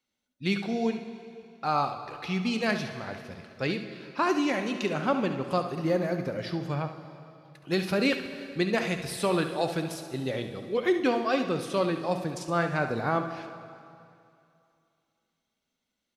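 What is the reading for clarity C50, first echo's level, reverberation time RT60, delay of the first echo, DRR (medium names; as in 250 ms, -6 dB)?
7.5 dB, -11.5 dB, 2.5 s, 70 ms, 6.5 dB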